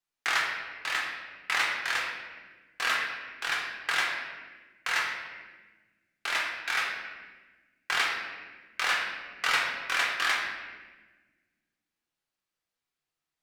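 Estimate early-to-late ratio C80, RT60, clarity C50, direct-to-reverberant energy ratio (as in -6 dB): 4.5 dB, 1.3 s, 2.5 dB, -2.5 dB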